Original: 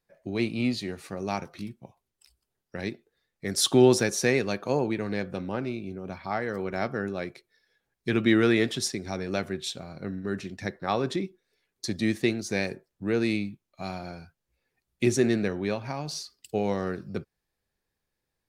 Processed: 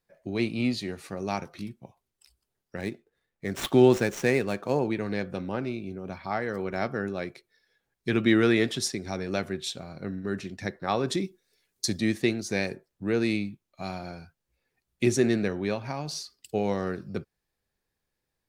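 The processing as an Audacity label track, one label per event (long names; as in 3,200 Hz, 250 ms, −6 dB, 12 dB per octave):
2.770000	4.880000	running median over 9 samples
11.080000	11.980000	bass and treble bass +2 dB, treble +9 dB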